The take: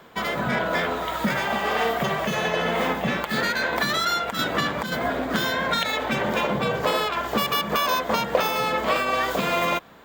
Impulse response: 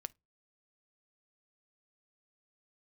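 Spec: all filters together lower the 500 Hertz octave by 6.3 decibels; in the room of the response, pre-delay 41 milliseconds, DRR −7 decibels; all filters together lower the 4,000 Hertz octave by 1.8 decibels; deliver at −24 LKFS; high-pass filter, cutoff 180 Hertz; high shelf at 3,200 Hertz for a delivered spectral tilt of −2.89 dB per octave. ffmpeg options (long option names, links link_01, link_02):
-filter_complex "[0:a]highpass=180,equalizer=frequency=500:width_type=o:gain=-8,highshelf=frequency=3200:gain=5.5,equalizer=frequency=4000:width_type=o:gain=-6,asplit=2[link_01][link_02];[1:a]atrim=start_sample=2205,adelay=41[link_03];[link_02][link_03]afir=irnorm=-1:irlink=0,volume=10.5dB[link_04];[link_01][link_04]amix=inputs=2:normalize=0,volume=-6.5dB"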